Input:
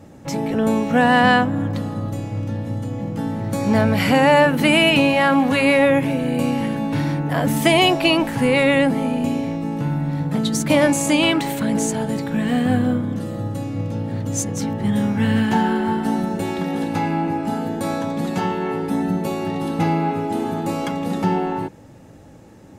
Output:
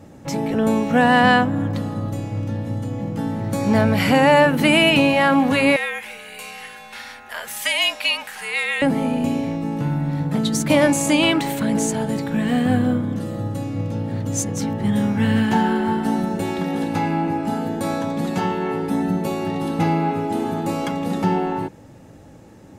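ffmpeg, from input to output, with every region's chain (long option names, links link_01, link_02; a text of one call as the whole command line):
ffmpeg -i in.wav -filter_complex "[0:a]asettb=1/sr,asplit=3[link_01][link_02][link_03];[link_01]atrim=end=5.764[link_04];[link_02]atrim=start=5.76:end=8.82,asetpts=PTS-STARTPTS,afade=type=in:duration=0.004:curve=qsin,afade=type=out:start_time=3.056:duration=0.004:curve=qsin,highpass=1500,aeval=exprs='val(0)+0.00112*(sin(2*PI*60*n/s)+sin(2*PI*2*60*n/s)/2+sin(2*PI*3*60*n/s)/3+sin(2*PI*4*60*n/s)/4+sin(2*PI*5*60*n/s)/5)':channel_layout=same,afreqshift=-58[link_05];[link_03]atrim=start=8.816[link_06];[link_04][link_05]acrossfade=duration=0.004:curve1=hsin:curve2=qsin[link_07];[link_07][link_06]acrossfade=duration=0.004:curve1=qsin:curve2=hsin" out.wav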